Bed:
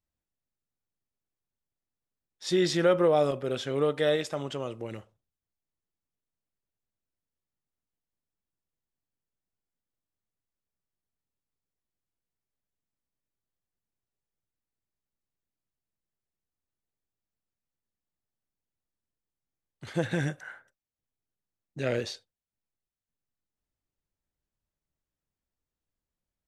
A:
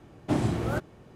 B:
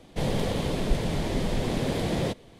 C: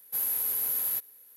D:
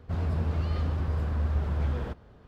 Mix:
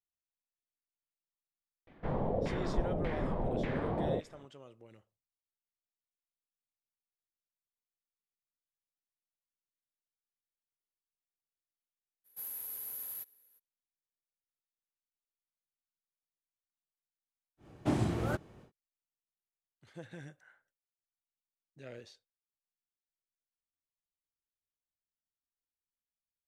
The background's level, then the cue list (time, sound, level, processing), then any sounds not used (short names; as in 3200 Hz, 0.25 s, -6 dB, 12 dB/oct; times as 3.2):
bed -19 dB
1.87 add B -8 dB + LFO low-pass saw down 1.7 Hz 520–2200 Hz
12.24 add C -13 dB, fades 0.02 s
17.57 add A -4.5 dB, fades 0.10 s
not used: D